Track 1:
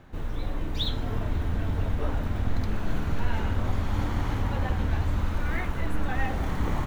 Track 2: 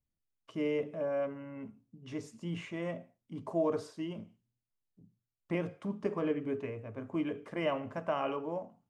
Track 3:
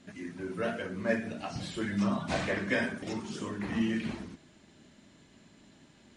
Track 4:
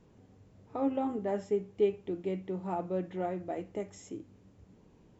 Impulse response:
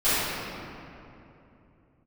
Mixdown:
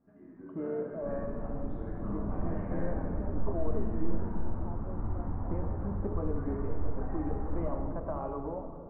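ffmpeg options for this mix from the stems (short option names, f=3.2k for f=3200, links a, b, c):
-filter_complex "[0:a]adelay=900,volume=-18.5dB,asplit=2[a][b];[b]volume=-10dB[c];[1:a]acompressor=threshold=-33dB:ratio=6,acrusher=bits=4:mode=log:mix=0:aa=0.000001,volume=-0.5dB,asplit=2[d][e];[e]volume=-23.5dB[f];[2:a]volume=-15dB,asplit=2[g][h];[h]volume=-11.5dB[i];[3:a]adelay=1950,volume=-14dB[j];[4:a]atrim=start_sample=2205[k];[c][f][i]amix=inputs=3:normalize=0[l];[l][k]afir=irnorm=-1:irlink=0[m];[a][d][g][j][m]amix=inputs=5:normalize=0,lowpass=f=1.2k:w=0.5412,lowpass=f=1.2k:w=1.3066"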